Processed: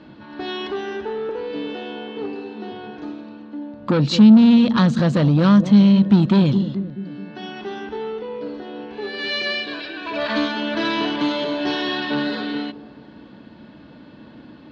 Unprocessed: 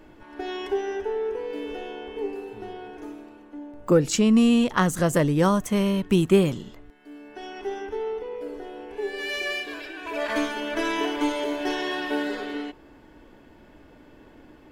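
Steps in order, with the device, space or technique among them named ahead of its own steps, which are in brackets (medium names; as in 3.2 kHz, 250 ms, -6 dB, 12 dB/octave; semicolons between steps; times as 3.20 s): 1.29–2.72 s: steep high-pass 210 Hz 36 dB/octave; analogue delay pedal into a guitar amplifier (bucket-brigade echo 214 ms, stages 1024, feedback 53%, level -15 dB; valve stage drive 21 dB, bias 0.25; cabinet simulation 92–4600 Hz, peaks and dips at 140 Hz +6 dB, 210 Hz +10 dB, 410 Hz -7 dB, 770 Hz -4 dB, 2.1 kHz -5 dB, 4.1 kHz +10 dB); trim +7 dB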